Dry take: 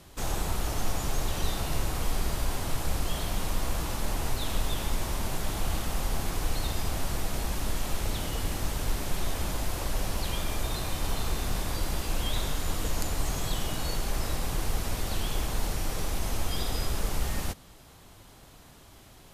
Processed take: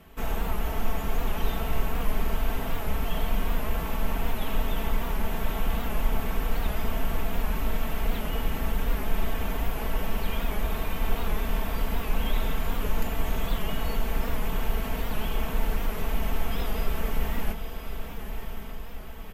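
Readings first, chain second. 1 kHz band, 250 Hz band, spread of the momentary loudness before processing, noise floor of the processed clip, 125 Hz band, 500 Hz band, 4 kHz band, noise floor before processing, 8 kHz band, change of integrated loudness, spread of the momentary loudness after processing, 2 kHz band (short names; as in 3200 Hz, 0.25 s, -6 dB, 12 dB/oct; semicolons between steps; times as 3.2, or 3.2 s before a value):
+2.0 dB, +3.0 dB, 1 LU, -35 dBFS, +0.5 dB, +3.0 dB, -3.5 dB, -52 dBFS, -9.5 dB, +1.0 dB, 2 LU, +2.0 dB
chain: band shelf 6300 Hz -13 dB; comb 4.5 ms; diffused feedback echo 1.103 s, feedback 55%, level -8 dB; record warp 78 rpm, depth 100 cents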